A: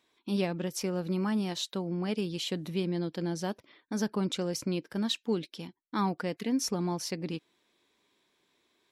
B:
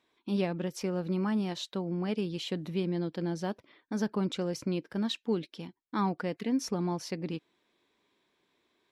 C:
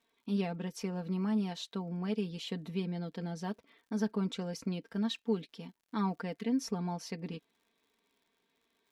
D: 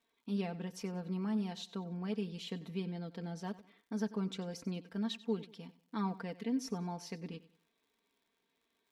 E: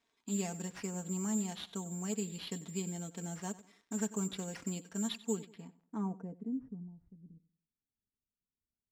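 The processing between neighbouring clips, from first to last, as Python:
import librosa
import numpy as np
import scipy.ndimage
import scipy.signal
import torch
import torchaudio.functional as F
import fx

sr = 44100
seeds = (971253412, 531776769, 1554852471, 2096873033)

y1 = fx.high_shelf(x, sr, hz=5100.0, db=-10.5)
y2 = y1 + 0.7 * np.pad(y1, (int(4.4 * sr / 1000.0), 0))[:len(y1)]
y2 = fx.dmg_crackle(y2, sr, seeds[0], per_s=76.0, level_db=-55.0)
y2 = F.gain(torch.from_numpy(y2), -5.5).numpy()
y3 = fx.echo_feedback(y2, sr, ms=94, feedback_pct=33, wet_db=-17.5)
y3 = F.gain(torch.from_numpy(y3), -3.5).numpy()
y4 = (np.kron(y3[::6], np.eye(6)[0]) * 6)[:len(y3)]
y4 = fx.filter_sweep_lowpass(y4, sr, from_hz=3900.0, to_hz=100.0, start_s=5.27, end_s=6.97, q=0.73)
y4 = fx.notch(y4, sr, hz=500.0, q=12.0)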